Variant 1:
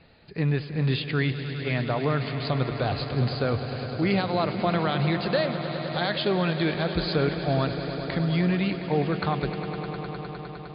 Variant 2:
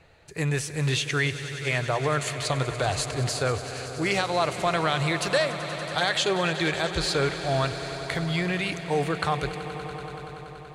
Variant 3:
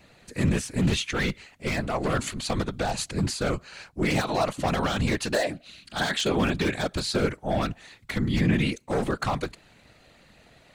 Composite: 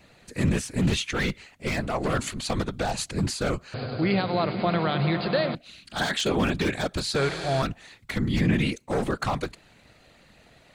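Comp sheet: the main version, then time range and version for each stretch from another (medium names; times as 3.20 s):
3
3.74–5.55 s: from 1
7.16–7.62 s: from 2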